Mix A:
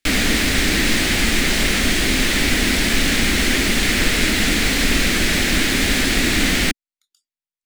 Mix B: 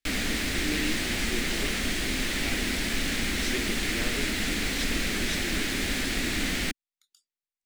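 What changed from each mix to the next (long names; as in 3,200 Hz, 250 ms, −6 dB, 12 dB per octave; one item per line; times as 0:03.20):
background −11.0 dB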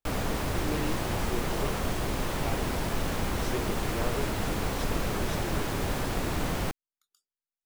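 master: add octave-band graphic EQ 125/250/500/1,000/2,000/4,000/8,000 Hz +11/−8/+5/+11/−11/−7/−6 dB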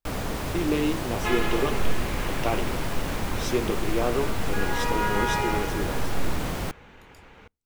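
speech +7.0 dB
second sound: unmuted
reverb: on, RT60 0.35 s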